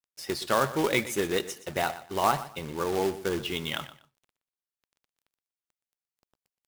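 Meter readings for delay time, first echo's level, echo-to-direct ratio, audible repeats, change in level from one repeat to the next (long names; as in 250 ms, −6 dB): 121 ms, −15.0 dB, −15.0 dB, 2, −13.0 dB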